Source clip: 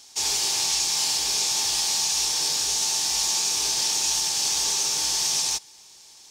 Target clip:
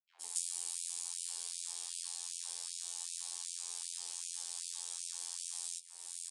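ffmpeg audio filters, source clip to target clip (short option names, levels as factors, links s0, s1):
-filter_complex "[0:a]afftfilt=real='hypot(re,im)*cos(PI*b)':imag='0':win_size=2048:overlap=0.75,acrossover=split=290|6100[s0][s1][s2];[s1]dynaudnorm=f=340:g=7:m=3.35[s3];[s0][s3][s2]amix=inputs=3:normalize=0,alimiter=limit=0.398:level=0:latency=1:release=109,acompressor=threshold=0.00794:ratio=10,asubboost=boost=5.5:cutoff=110,flanger=delay=5.2:depth=8.8:regen=-70:speed=0.71:shape=sinusoidal,aexciter=amount=15.9:drive=1.5:freq=8400,acrossover=split=280|2200[s4][s5][s6];[s5]adelay=90[s7];[s6]adelay=210[s8];[s4][s7][s8]amix=inputs=3:normalize=0,aresample=22050,aresample=44100,afftfilt=real='re*gte(b*sr/1024,200*pow(2300/200,0.5+0.5*sin(2*PI*2.6*pts/sr)))':imag='im*gte(b*sr/1024,200*pow(2300/200,0.5+0.5*sin(2*PI*2.6*pts/sr)))':win_size=1024:overlap=0.75,volume=2"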